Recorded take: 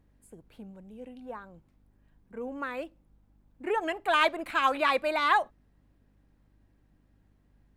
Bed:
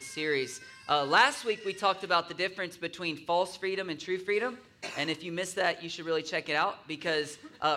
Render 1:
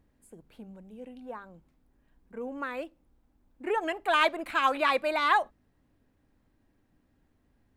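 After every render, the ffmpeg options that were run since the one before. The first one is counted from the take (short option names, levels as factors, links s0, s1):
-af "bandreject=f=50:t=h:w=4,bandreject=f=100:t=h:w=4,bandreject=f=150:t=h:w=4,bandreject=f=200:t=h:w=4"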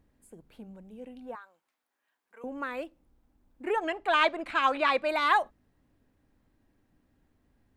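-filter_complex "[0:a]asettb=1/sr,asplit=3[s0][s1][s2];[s0]atrim=end=1.354[s3];[s1]atrim=start=1.35:end=2.44,asetpts=PTS-STARTPTS,afade=t=in:d=0.004:c=qsin,afade=t=out:st=1.086:d=0.004:c=qsin,highpass=1000[s4];[s2]atrim=start=2.436[s5];[s3][s4]acrossfade=d=0.004:c1=hsin:c2=qsin[s6];[s6][s5]acrossfade=d=0.004:c1=qsin:c2=hsin,asettb=1/sr,asplit=3[s7][s8][s9];[s7]atrim=end=3.804[s10];[s8]atrim=start=3.8:end=5.09,asetpts=PTS-STARTPTS,afade=t=in:d=0.004:c=qsin,afade=t=out:st=1.286:d=0.004:c=qsin,lowpass=6600[s11];[s9]atrim=start=5.086[s12];[s10][s11]acrossfade=d=0.004:c1=hsin:c2=qsin[s13];[s13][s12]acrossfade=d=0.004:c1=qsin:c2=hsin"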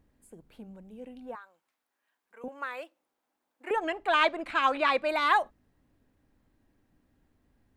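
-filter_complex "[0:a]asettb=1/sr,asplit=3[s0][s1][s2];[s0]atrim=end=2.484[s3];[s1]atrim=start=2.48:end=3.71,asetpts=PTS-STARTPTS,afade=t=in:d=0.004:c=qsin,afade=t=out:st=1.226:d=0.004:c=qsin,highpass=620[s4];[s2]atrim=start=3.706[s5];[s3][s4]acrossfade=d=0.004:c1=hsin:c2=qsin[s6];[s6][s5]acrossfade=d=0.004:c1=qsin:c2=hsin"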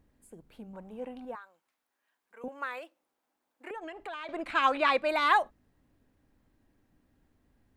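-filter_complex "[0:a]asettb=1/sr,asplit=3[s0][s1][s2];[s0]atrim=end=0.734[s3];[s1]atrim=start=0.73:end=1.25,asetpts=PTS-STARTPTS,afade=t=in:d=0.004:c=qsin,afade=t=out:st=0.516:d=0.004:c=qsin,equalizer=f=990:w=0.8:g=14[s4];[s2]atrim=start=1.246[s5];[s3][s4]acrossfade=d=0.004:c1=hsin:c2=qsin[s6];[s6][s5]acrossfade=d=0.004:c1=qsin:c2=hsin,asettb=1/sr,asplit=3[s7][s8][s9];[s7]atrim=end=2.784[s10];[s8]atrim=start=2.78:end=4.29,asetpts=PTS-STARTPTS,afade=t=in:d=0.004:c=qsin,afade=t=out:st=1.506:d=0.004:c=qsin,acompressor=threshold=0.0126:ratio=6:attack=3.2:release=140:knee=1:detection=peak[s11];[s9]atrim=start=4.286[s12];[s10][s11]acrossfade=d=0.004:c1=hsin:c2=qsin[s13];[s13][s12]acrossfade=d=0.004:c1=qsin:c2=hsin"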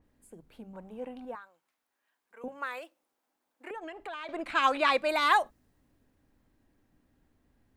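-af "bandreject=f=50:t=h:w=6,bandreject=f=100:t=h:w=6,bandreject=f=150:t=h:w=6,bandreject=f=200:t=h:w=6,adynamicequalizer=threshold=0.00631:dfrequency=4100:dqfactor=0.7:tfrequency=4100:tqfactor=0.7:attack=5:release=100:ratio=0.375:range=3.5:mode=boostabove:tftype=highshelf"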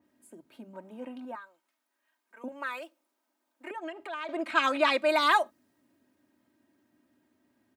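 -af "highpass=f=130:w=0.5412,highpass=f=130:w=1.3066,aecho=1:1:3.2:0.67"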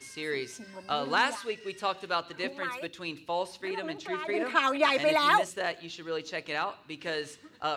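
-filter_complex "[1:a]volume=0.668[s0];[0:a][s0]amix=inputs=2:normalize=0"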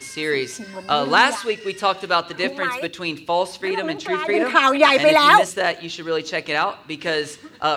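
-af "volume=3.55,alimiter=limit=0.891:level=0:latency=1"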